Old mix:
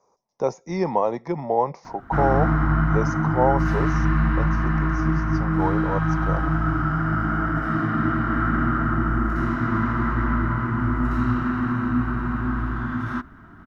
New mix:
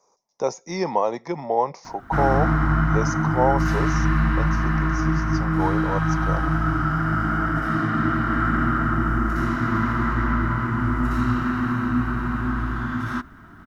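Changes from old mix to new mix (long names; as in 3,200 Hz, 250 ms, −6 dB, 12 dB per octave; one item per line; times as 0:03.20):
speech: add low-shelf EQ 160 Hz −8.5 dB
master: add high-shelf EQ 3,600 Hz +11.5 dB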